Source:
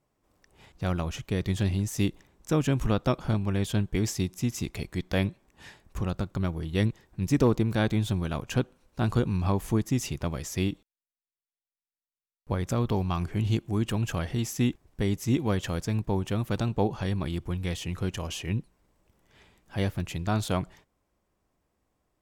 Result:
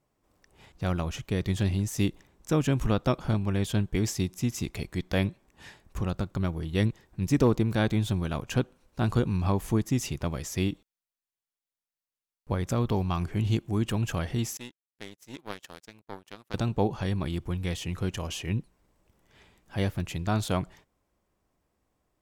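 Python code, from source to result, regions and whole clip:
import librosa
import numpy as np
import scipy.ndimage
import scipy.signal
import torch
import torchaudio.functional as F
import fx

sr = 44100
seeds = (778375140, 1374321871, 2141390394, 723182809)

y = fx.chain(x, sr, fx.highpass(hz=610.0, slope=6),
    fx.power_curve(exponent=2.0), at=(14.57, 16.54))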